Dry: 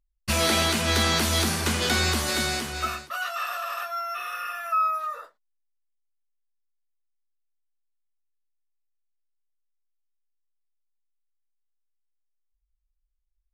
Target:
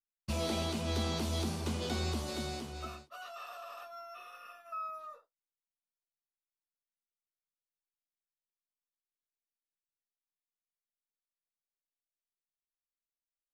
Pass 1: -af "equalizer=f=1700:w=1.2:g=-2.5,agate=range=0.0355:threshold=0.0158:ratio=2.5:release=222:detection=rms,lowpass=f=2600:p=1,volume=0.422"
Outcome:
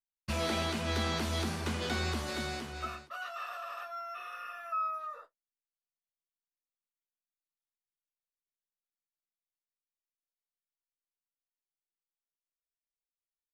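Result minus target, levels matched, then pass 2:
2 kHz band +6.0 dB
-af "equalizer=f=1700:w=1.2:g=-13,agate=range=0.0355:threshold=0.0158:ratio=2.5:release=222:detection=rms,lowpass=f=2600:p=1,volume=0.422"

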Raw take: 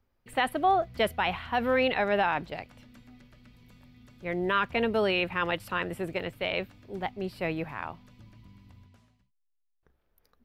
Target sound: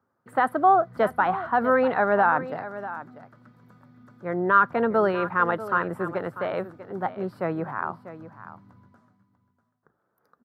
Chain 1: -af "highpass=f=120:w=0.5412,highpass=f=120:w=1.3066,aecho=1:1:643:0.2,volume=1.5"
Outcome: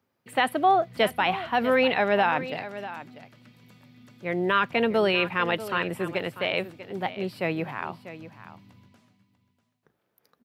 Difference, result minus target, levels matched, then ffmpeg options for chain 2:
4 kHz band +18.5 dB
-af "highpass=f=120:w=0.5412,highpass=f=120:w=1.3066,highshelf=f=1900:t=q:w=3:g=-11,aecho=1:1:643:0.2,volume=1.5"

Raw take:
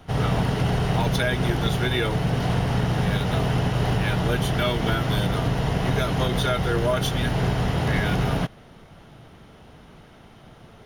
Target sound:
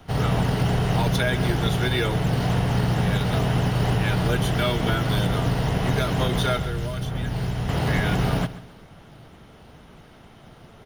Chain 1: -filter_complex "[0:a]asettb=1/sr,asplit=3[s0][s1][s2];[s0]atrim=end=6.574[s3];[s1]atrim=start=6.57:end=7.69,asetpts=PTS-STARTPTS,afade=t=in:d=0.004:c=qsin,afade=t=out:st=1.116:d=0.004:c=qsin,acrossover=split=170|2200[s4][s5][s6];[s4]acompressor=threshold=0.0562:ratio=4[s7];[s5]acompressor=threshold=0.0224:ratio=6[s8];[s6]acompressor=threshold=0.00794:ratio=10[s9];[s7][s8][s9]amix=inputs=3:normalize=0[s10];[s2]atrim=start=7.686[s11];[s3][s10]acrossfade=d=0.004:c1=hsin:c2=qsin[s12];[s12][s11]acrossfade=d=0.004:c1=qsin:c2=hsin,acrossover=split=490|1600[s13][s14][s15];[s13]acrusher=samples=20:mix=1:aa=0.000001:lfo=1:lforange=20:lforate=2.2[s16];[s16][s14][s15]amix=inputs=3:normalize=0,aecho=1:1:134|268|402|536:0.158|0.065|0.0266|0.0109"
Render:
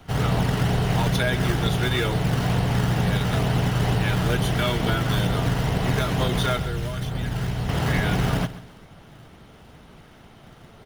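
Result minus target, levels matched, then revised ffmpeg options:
decimation with a swept rate: distortion +10 dB
-filter_complex "[0:a]asettb=1/sr,asplit=3[s0][s1][s2];[s0]atrim=end=6.574[s3];[s1]atrim=start=6.57:end=7.69,asetpts=PTS-STARTPTS,afade=t=in:d=0.004:c=qsin,afade=t=out:st=1.116:d=0.004:c=qsin,acrossover=split=170|2200[s4][s5][s6];[s4]acompressor=threshold=0.0562:ratio=4[s7];[s5]acompressor=threshold=0.0224:ratio=6[s8];[s6]acompressor=threshold=0.00794:ratio=10[s9];[s7][s8][s9]amix=inputs=3:normalize=0[s10];[s2]atrim=start=7.686[s11];[s3][s10]acrossfade=d=0.004:c1=hsin:c2=qsin[s12];[s12][s11]acrossfade=d=0.004:c1=qsin:c2=hsin,acrossover=split=490|1600[s13][s14][s15];[s13]acrusher=samples=7:mix=1:aa=0.000001:lfo=1:lforange=7:lforate=2.2[s16];[s16][s14][s15]amix=inputs=3:normalize=0,aecho=1:1:134|268|402|536:0.158|0.065|0.0266|0.0109"

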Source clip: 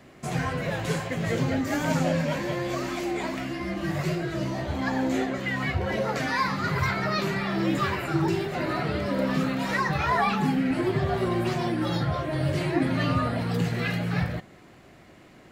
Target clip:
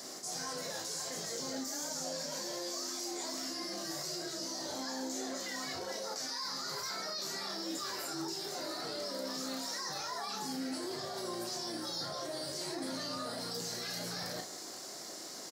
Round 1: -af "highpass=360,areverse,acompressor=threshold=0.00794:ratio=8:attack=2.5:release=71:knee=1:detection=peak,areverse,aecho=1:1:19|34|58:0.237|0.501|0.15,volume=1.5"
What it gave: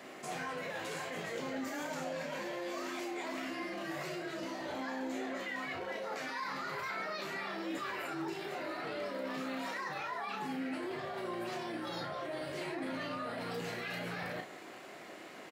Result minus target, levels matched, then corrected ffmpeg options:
8 kHz band -13.0 dB
-af "highpass=360,highshelf=f=3700:t=q:w=3:g=13,areverse,acompressor=threshold=0.00794:ratio=8:attack=2.5:release=71:knee=1:detection=peak,areverse,aecho=1:1:19|34|58:0.237|0.501|0.15,volume=1.5"

